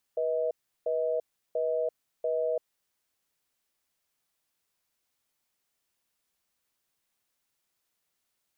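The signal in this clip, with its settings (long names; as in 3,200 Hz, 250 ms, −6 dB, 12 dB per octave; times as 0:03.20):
tone pair in a cadence 487 Hz, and 635 Hz, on 0.34 s, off 0.35 s, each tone −28.5 dBFS 2.59 s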